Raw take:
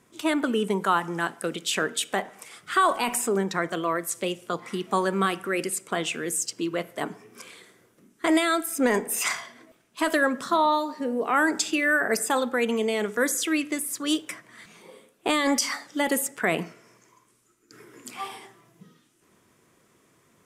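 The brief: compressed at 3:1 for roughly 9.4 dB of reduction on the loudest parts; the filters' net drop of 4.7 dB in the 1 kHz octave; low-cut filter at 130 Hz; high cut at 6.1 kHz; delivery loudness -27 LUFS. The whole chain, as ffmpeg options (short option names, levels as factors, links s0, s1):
-af "highpass=130,lowpass=6100,equalizer=f=1000:t=o:g=-6,acompressor=threshold=0.0251:ratio=3,volume=2.51"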